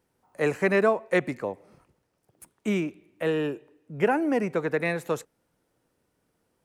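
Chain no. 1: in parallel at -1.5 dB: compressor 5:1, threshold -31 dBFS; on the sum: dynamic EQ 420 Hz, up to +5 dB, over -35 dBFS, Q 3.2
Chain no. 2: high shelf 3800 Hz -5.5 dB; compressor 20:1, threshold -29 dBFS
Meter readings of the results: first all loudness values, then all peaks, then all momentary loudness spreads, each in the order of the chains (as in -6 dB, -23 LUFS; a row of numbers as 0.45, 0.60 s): -22.5, -35.5 LUFS; -5.5, -19.0 dBFS; 12, 7 LU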